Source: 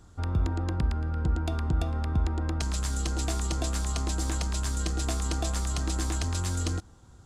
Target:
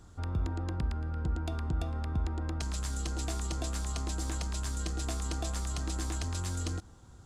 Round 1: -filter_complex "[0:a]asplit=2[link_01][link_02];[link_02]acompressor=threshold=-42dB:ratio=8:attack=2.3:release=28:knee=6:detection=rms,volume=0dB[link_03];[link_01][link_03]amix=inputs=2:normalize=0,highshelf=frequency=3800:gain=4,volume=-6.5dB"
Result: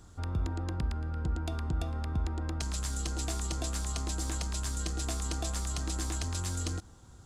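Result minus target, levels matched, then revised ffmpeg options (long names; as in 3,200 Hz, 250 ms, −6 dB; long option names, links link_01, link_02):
8,000 Hz band +2.5 dB
-filter_complex "[0:a]asplit=2[link_01][link_02];[link_02]acompressor=threshold=-42dB:ratio=8:attack=2.3:release=28:knee=6:detection=rms,volume=0dB[link_03];[link_01][link_03]amix=inputs=2:normalize=0,volume=-6.5dB"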